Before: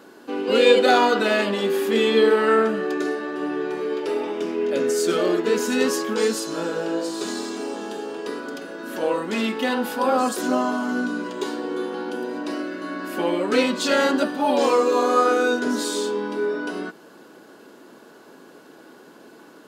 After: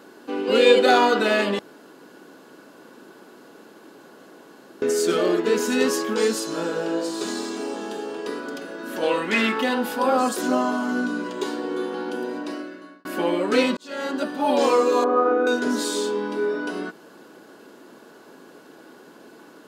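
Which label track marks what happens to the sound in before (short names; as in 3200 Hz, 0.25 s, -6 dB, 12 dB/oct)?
1.590000	4.820000	room tone
9.020000	9.610000	bell 3800 Hz -> 1200 Hz +11.5 dB 1.2 oct
12.290000	13.050000	fade out
13.770000	14.530000	fade in
15.040000	15.470000	LPF 1200 Hz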